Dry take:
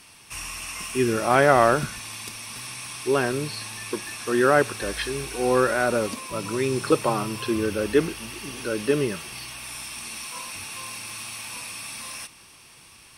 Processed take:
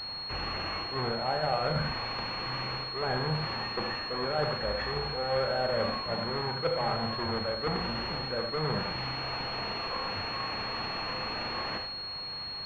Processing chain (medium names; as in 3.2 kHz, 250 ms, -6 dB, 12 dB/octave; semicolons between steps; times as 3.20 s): square wave that keeps the level; peaking EQ 300 Hz -13.5 dB 0.99 oct; reverse; compression 6:1, threshold -33 dBFS, peak gain reduction 20.5 dB; reverse; small resonant body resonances 500/760 Hz, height 8 dB; on a send: flutter echo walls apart 7 m, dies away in 0.24 s; on the sum: gated-style reverb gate 120 ms rising, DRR 5.5 dB; speed mistake 24 fps film run at 25 fps; class-D stage that switches slowly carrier 4.3 kHz; trim +2 dB